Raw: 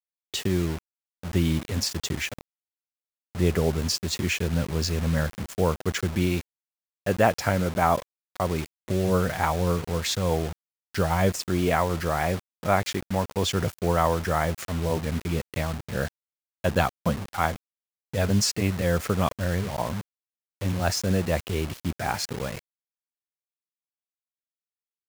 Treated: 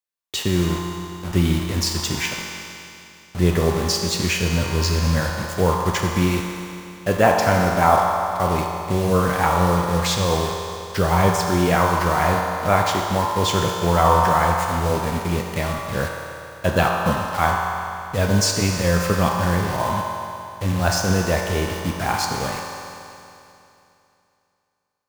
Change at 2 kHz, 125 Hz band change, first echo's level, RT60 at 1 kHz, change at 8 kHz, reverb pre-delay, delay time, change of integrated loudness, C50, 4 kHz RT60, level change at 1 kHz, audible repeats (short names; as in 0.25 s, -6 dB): +7.0 dB, +5.0 dB, none, 2.8 s, +6.0 dB, 9 ms, none, +6.0 dB, 0.0 dB, 2.8 s, +9.0 dB, none